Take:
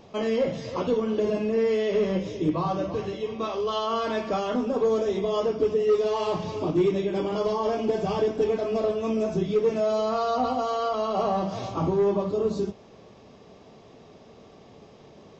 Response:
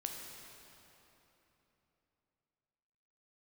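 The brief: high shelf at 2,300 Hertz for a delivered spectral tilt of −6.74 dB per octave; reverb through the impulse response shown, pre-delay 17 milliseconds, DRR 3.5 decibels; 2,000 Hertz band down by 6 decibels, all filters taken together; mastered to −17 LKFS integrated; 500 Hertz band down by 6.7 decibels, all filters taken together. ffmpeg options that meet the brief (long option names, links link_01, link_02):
-filter_complex "[0:a]equalizer=frequency=500:width_type=o:gain=-8,equalizer=frequency=2000:width_type=o:gain=-3.5,highshelf=frequency=2300:gain=-7,asplit=2[link_01][link_02];[1:a]atrim=start_sample=2205,adelay=17[link_03];[link_02][link_03]afir=irnorm=-1:irlink=0,volume=-3dB[link_04];[link_01][link_04]amix=inputs=2:normalize=0,volume=12dB"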